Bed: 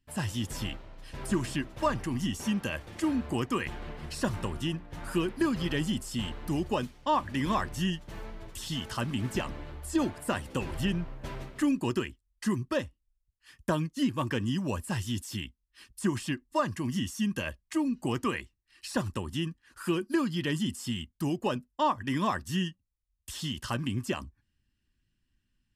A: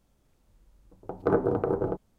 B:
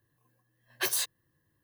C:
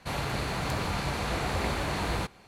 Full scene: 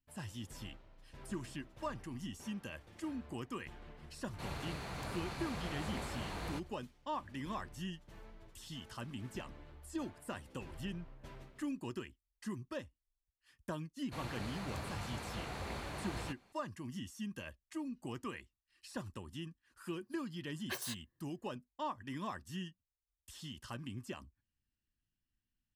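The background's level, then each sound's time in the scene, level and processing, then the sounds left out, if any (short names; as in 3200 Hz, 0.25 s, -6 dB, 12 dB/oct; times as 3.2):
bed -13 dB
4.33 add C -12.5 dB
14.06 add C -13 dB
19.89 add B -9 dB + high shelf 5000 Hz -7 dB
not used: A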